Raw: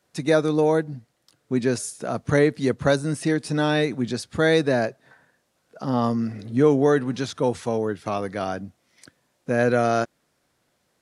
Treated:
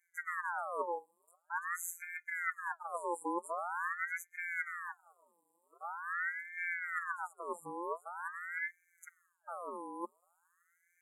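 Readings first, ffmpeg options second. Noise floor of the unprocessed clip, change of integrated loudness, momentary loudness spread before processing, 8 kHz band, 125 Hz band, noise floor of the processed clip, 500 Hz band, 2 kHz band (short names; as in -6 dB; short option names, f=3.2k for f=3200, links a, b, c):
-71 dBFS, -16.5 dB, 10 LU, -12.5 dB, under -40 dB, -78 dBFS, -24.0 dB, -7.0 dB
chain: -af "afftfilt=real='hypot(re,im)*cos(PI*b)':imag='0':win_size=1024:overlap=0.75,areverse,acompressor=threshold=-36dB:ratio=5,areverse,afftfilt=real='re*(1-between(b*sr/4096,500,7800))':imag='im*(1-between(b*sr/4096,500,7800))':win_size=4096:overlap=0.75,aeval=exprs='val(0)*sin(2*PI*1300*n/s+1300*0.5/0.45*sin(2*PI*0.45*n/s))':c=same,volume=5dB"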